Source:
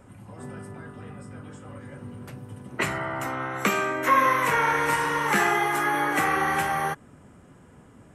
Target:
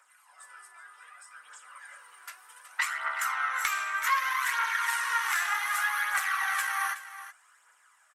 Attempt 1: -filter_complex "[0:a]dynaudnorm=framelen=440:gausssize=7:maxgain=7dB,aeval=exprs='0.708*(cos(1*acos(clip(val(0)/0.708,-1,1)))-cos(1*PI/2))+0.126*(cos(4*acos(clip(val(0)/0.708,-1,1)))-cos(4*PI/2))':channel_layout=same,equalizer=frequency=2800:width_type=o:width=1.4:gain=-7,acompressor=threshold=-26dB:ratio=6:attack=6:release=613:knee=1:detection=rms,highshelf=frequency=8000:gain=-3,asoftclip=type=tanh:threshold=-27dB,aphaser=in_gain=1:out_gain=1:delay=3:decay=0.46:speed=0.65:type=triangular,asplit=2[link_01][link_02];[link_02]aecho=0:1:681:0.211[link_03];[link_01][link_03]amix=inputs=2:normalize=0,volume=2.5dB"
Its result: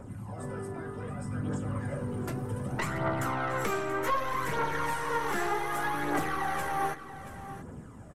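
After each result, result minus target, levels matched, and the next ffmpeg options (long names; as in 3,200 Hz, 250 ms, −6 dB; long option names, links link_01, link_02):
echo 309 ms late; soft clipping: distortion +20 dB; 1,000 Hz band +4.0 dB
-filter_complex "[0:a]dynaudnorm=framelen=440:gausssize=7:maxgain=7dB,aeval=exprs='0.708*(cos(1*acos(clip(val(0)/0.708,-1,1)))-cos(1*PI/2))+0.126*(cos(4*acos(clip(val(0)/0.708,-1,1)))-cos(4*PI/2))':channel_layout=same,equalizer=frequency=2800:width_type=o:width=1.4:gain=-7,acompressor=threshold=-26dB:ratio=6:attack=6:release=613:knee=1:detection=rms,highshelf=frequency=8000:gain=-3,asoftclip=type=tanh:threshold=-27dB,aphaser=in_gain=1:out_gain=1:delay=3:decay=0.46:speed=0.65:type=triangular,asplit=2[link_01][link_02];[link_02]aecho=0:1:372:0.211[link_03];[link_01][link_03]amix=inputs=2:normalize=0,volume=2.5dB"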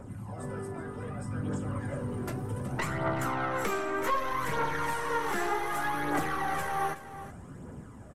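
soft clipping: distortion +20 dB; 1,000 Hz band +4.0 dB
-filter_complex "[0:a]dynaudnorm=framelen=440:gausssize=7:maxgain=7dB,aeval=exprs='0.708*(cos(1*acos(clip(val(0)/0.708,-1,1)))-cos(1*PI/2))+0.126*(cos(4*acos(clip(val(0)/0.708,-1,1)))-cos(4*PI/2))':channel_layout=same,equalizer=frequency=2800:width_type=o:width=1.4:gain=-7,acompressor=threshold=-26dB:ratio=6:attack=6:release=613:knee=1:detection=rms,highshelf=frequency=8000:gain=-3,asoftclip=type=tanh:threshold=-15dB,aphaser=in_gain=1:out_gain=1:delay=3:decay=0.46:speed=0.65:type=triangular,asplit=2[link_01][link_02];[link_02]aecho=0:1:372:0.211[link_03];[link_01][link_03]amix=inputs=2:normalize=0,volume=2.5dB"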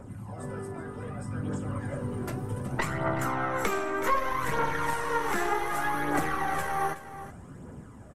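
1,000 Hz band +4.0 dB
-filter_complex "[0:a]dynaudnorm=framelen=440:gausssize=7:maxgain=7dB,aeval=exprs='0.708*(cos(1*acos(clip(val(0)/0.708,-1,1)))-cos(1*PI/2))+0.126*(cos(4*acos(clip(val(0)/0.708,-1,1)))-cos(4*PI/2))':channel_layout=same,highpass=frequency=1300:width=0.5412,highpass=frequency=1300:width=1.3066,equalizer=frequency=2800:width_type=o:width=1.4:gain=-7,acompressor=threshold=-26dB:ratio=6:attack=6:release=613:knee=1:detection=rms,highshelf=frequency=8000:gain=-3,asoftclip=type=tanh:threshold=-15dB,aphaser=in_gain=1:out_gain=1:delay=3:decay=0.46:speed=0.65:type=triangular,asplit=2[link_01][link_02];[link_02]aecho=0:1:372:0.211[link_03];[link_01][link_03]amix=inputs=2:normalize=0,volume=2.5dB"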